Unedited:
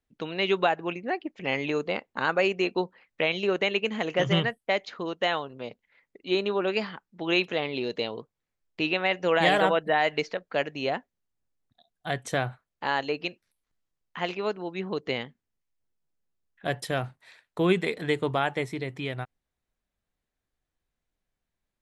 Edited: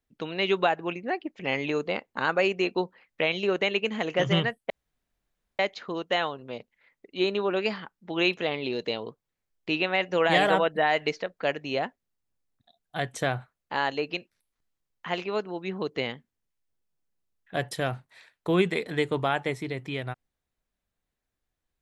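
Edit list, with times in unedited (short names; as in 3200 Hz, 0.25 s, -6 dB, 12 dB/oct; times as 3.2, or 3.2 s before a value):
4.7 insert room tone 0.89 s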